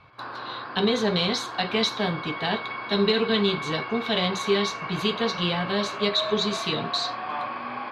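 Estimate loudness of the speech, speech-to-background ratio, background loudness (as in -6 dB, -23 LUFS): -25.5 LUFS, 7.5 dB, -33.0 LUFS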